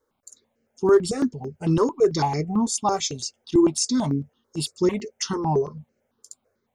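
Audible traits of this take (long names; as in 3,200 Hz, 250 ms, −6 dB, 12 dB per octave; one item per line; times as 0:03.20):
notches that jump at a steady rate 9 Hz 700–3,500 Hz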